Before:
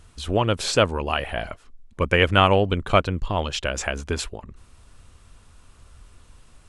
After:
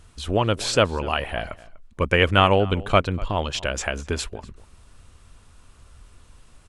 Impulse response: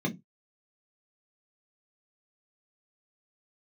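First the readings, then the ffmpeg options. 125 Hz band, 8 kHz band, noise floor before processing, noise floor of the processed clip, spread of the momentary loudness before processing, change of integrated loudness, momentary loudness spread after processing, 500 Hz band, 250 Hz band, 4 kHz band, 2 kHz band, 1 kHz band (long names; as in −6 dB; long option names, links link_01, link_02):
0.0 dB, 0.0 dB, −53 dBFS, −53 dBFS, 13 LU, 0.0 dB, 13 LU, 0.0 dB, 0.0 dB, 0.0 dB, 0.0 dB, 0.0 dB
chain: -filter_complex "[0:a]asplit=2[link_01][link_02];[link_02]adelay=244.9,volume=-20dB,highshelf=frequency=4000:gain=-5.51[link_03];[link_01][link_03]amix=inputs=2:normalize=0"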